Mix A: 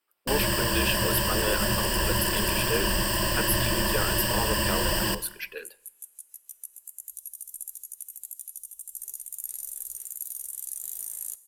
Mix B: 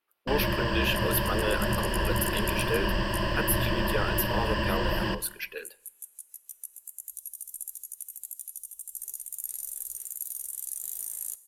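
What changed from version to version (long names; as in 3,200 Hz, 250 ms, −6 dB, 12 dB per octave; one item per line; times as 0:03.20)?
first sound: add high-frequency loss of the air 230 metres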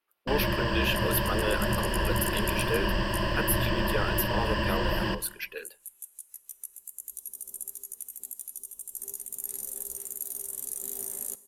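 speech: send off
second sound: remove guitar amp tone stack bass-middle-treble 10-0-10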